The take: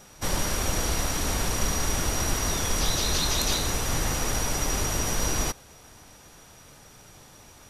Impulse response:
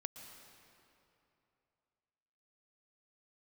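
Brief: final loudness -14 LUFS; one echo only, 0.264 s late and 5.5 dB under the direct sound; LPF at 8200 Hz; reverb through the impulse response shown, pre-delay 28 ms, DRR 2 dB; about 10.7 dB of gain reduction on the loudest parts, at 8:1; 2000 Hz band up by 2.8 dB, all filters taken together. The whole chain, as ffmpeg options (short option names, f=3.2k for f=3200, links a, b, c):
-filter_complex "[0:a]lowpass=8.2k,equalizer=f=2k:t=o:g=3.5,acompressor=threshold=-32dB:ratio=8,aecho=1:1:264:0.531,asplit=2[a][b];[1:a]atrim=start_sample=2205,adelay=28[c];[b][c]afir=irnorm=-1:irlink=0,volume=1dB[d];[a][d]amix=inputs=2:normalize=0,volume=19dB"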